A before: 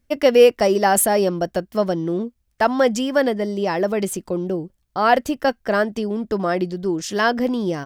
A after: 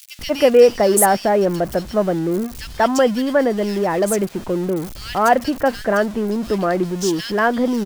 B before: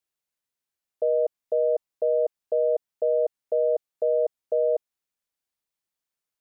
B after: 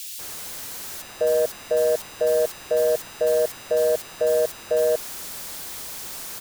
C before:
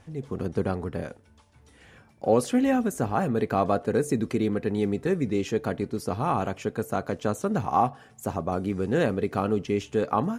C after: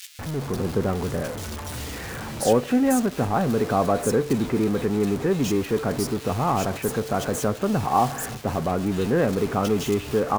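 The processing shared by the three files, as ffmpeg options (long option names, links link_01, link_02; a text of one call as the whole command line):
ffmpeg -i in.wav -filter_complex "[0:a]aeval=exprs='val(0)+0.5*0.0398*sgn(val(0))':channel_layout=same,acrossover=split=2500[link_01][link_02];[link_01]adelay=190[link_03];[link_03][link_02]amix=inputs=2:normalize=0,volume=1dB" out.wav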